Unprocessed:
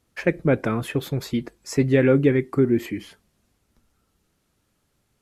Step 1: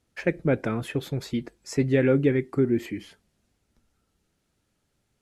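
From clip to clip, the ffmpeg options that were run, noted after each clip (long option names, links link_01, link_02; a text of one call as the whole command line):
ffmpeg -i in.wav -af "lowpass=11000,equalizer=frequency=1100:width_type=o:width=0.3:gain=-4.5,volume=-3.5dB" out.wav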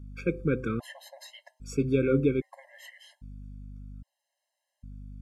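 ffmpeg -i in.wav -af "bandreject=frequency=128:width_type=h:width=4,bandreject=frequency=256:width_type=h:width=4,bandreject=frequency=384:width_type=h:width=4,bandreject=frequency=512:width_type=h:width=4,bandreject=frequency=640:width_type=h:width=4,bandreject=frequency=768:width_type=h:width=4,bandreject=frequency=896:width_type=h:width=4,bandreject=frequency=1024:width_type=h:width=4,bandreject=frequency=1152:width_type=h:width=4,bandreject=frequency=1280:width_type=h:width=4,aeval=exprs='val(0)+0.0112*(sin(2*PI*50*n/s)+sin(2*PI*2*50*n/s)/2+sin(2*PI*3*50*n/s)/3+sin(2*PI*4*50*n/s)/4+sin(2*PI*5*50*n/s)/5)':channel_layout=same,afftfilt=real='re*gt(sin(2*PI*0.62*pts/sr)*(1-2*mod(floor(b*sr/1024/540),2)),0)':imag='im*gt(sin(2*PI*0.62*pts/sr)*(1-2*mod(floor(b*sr/1024/540),2)),0)':win_size=1024:overlap=0.75,volume=-2.5dB" out.wav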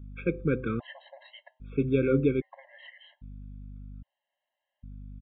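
ffmpeg -i in.wav -af "aresample=8000,aresample=44100" out.wav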